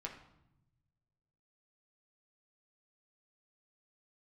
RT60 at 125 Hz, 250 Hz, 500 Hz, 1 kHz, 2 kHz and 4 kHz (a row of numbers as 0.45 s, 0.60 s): 2.0 s, 1.3 s, 0.85 s, 0.80 s, 0.65 s, 0.65 s